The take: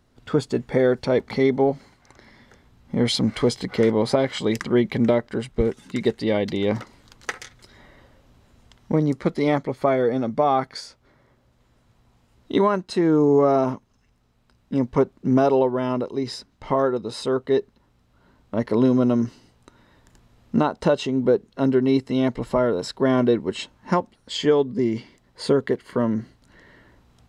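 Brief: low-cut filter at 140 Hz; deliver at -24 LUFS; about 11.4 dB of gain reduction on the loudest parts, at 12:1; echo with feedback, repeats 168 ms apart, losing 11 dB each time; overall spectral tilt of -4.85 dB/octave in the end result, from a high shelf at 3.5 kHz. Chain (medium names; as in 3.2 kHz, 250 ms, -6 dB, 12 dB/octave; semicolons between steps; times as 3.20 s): high-pass 140 Hz; treble shelf 3.5 kHz +4.5 dB; compression 12:1, threshold -25 dBFS; feedback delay 168 ms, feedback 28%, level -11 dB; trim +7 dB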